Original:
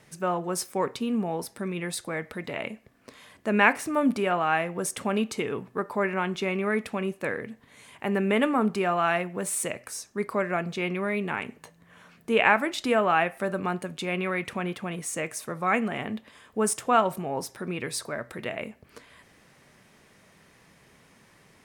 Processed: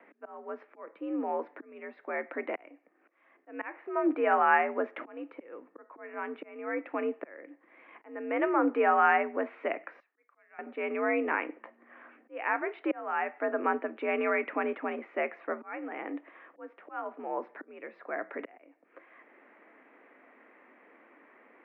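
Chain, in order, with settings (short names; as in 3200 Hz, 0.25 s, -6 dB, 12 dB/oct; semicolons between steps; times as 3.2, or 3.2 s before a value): auto swell 0.776 s; mistuned SSB +67 Hz 210–2200 Hz; 10–10.59 differentiator; gain +1.5 dB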